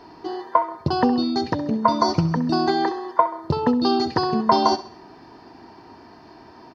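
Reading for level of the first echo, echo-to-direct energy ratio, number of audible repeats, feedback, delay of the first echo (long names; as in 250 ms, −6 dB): −15.0 dB, −14.0 dB, 3, 45%, 66 ms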